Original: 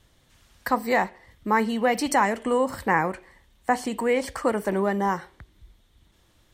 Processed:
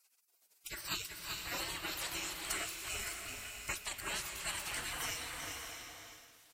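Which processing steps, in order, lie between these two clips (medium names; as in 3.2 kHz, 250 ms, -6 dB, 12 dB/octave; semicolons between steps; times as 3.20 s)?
on a send: delay 385 ms -7.5 dB; on the sum: spectral gate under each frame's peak -30 dB weak; gain riding within 3 dB 0.5 s; swelling reverb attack 620 ms, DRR 4 dB; trim +5.5 dB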